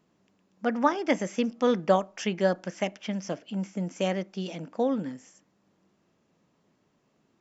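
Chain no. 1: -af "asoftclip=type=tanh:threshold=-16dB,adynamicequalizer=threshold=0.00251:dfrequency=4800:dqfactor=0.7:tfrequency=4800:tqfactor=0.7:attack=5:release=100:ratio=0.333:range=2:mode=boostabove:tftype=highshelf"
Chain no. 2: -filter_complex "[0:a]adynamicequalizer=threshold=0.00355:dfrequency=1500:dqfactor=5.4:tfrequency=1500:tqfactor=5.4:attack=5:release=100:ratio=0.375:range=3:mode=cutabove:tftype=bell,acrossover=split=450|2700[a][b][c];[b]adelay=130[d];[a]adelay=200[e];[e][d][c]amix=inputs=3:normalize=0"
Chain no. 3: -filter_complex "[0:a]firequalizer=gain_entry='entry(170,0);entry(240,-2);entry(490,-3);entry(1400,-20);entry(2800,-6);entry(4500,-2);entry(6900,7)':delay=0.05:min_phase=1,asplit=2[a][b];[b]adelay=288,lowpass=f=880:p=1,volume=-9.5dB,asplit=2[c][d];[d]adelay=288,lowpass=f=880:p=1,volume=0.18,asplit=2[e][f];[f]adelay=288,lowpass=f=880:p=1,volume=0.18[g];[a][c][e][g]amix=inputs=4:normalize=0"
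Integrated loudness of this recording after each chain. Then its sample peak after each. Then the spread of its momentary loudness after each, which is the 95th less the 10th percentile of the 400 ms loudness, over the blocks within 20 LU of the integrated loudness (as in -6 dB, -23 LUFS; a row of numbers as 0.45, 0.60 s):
-30.5, -30.5, -31.5 LUFS; -16.0, -10.5, -12.5 dBFS; 8, 9, 8 LU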